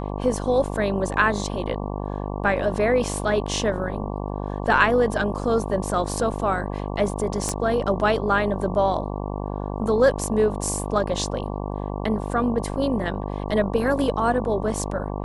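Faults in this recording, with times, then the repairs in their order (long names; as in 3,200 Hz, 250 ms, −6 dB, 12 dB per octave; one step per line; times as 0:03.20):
mains buzz 50 Hz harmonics 23 −29 dBFS
0:07.49: click −12 dBFS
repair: click removal
hum removal 50 Hz, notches 23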